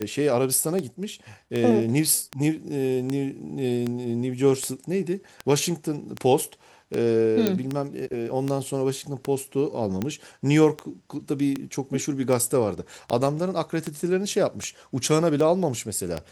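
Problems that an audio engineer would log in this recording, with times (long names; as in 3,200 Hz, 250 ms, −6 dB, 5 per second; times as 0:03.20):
scratch tick 78 rpm −14 dBFS
0:07.47: click −8 dBFS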